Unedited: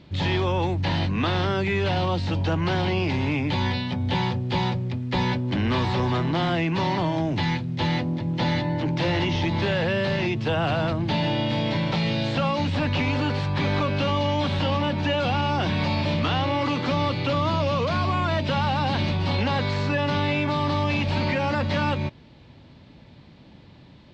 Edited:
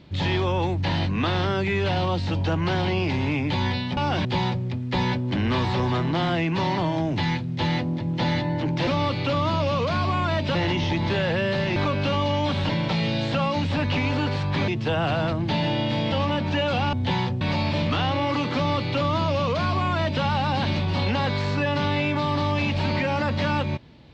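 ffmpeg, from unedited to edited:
-filter_complex "[0:a]asplit=11[s0][s1][s2][s3][s4][s5][s6][s7][s8][s9][s10];[s0]atrim=end=3.972[s11];[s1]atrim=start=15.448:end=15.732[s12];[s2]atrim=start=4.448:end=9.072[s13];[s3]atrim=start=16.868:end=18.552[s14];[s4]atrim=start=9.068:end=10.282[s15];[s5]atrim=start=13.708:end=14.642[s16];[s6]atrim=start=11.718:end=13.712[s17];[s7]atrim=start=10.278:end=11.722[s18];[s8]atrim=start=14.638:end=15.452[s19];[s9]atrim=start=3.968:end=4.452[s20];[s10]atrim=start=15.728[s21];[s11][s12]acrossfade=d=0.004:c1=hsin:c2=hsin[s22];[s22][s13]acrossfade=d=0.004:c1=hsin:c2=hsin[s23];[s23][s14]acrossfade=d=0.004:c1=hsin:c2=hsin[s24];[s24][s15]acrossfade=d=0.004:c1=hsin:c2=hsin[s25];[s25][s16]acrossfade=d=0.004:c1=hsin:c2=hsin[s26];[s26][s17]acrossfade=d=0.004:c1=hsin:c2=hsin[s27];[s27][s18]acrossfade=d=0.004:c1=hsin:c2=hsin[s28];[s28][s19]acrossfade=d=0.004:c1=hsin:c2=hsin[s29];[s29][s20]acrossfade=d=0.004:c1=hsin:c2=hsin[s30];[s30][s21]acrossfade=d=0.004:c1=hsin:c2=hsin"

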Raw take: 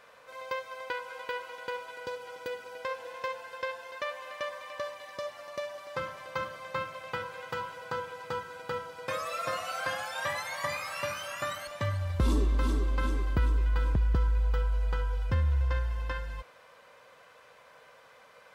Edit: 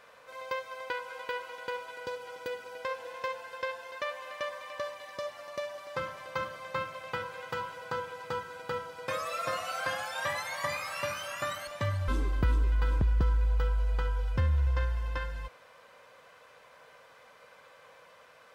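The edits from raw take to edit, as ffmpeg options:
-filter_complex "[0:a]asplit=2[s0][s1];[s0]atrim=end=12.082[s2];[s1]atrim=start=13.018[s3];[s2][s3]acrossfade=d=0.004:c1=hsin:c2=hsin"

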